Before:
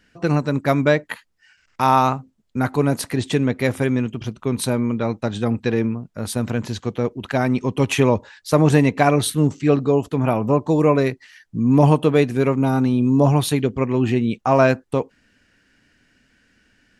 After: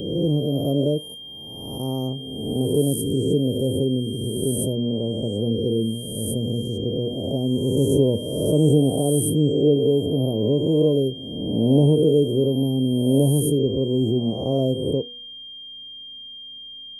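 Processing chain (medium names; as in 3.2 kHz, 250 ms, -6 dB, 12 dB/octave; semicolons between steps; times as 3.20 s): reverse spectral sustain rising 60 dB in 1.36 s; elliptic band-stop 470–9300 Hz, stop band 80 dB; whistle 3.2 kHz -34 dBFS; de-hum 242.8 Hz, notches 32; trim -2 dB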